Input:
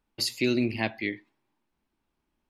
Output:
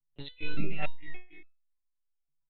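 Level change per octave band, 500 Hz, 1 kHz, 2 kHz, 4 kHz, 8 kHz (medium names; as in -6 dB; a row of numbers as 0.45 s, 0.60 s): -13.5 dB, -6.0 dB, -8.5 dB, -14.5 dB, under -40 dB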